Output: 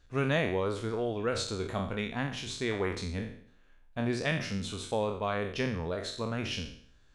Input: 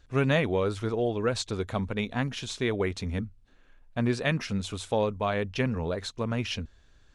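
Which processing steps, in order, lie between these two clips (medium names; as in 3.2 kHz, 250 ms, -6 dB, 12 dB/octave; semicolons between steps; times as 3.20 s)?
spectral sustain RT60 0.58 s; de-hum 62.36 Hz, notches 2; trim -5 dB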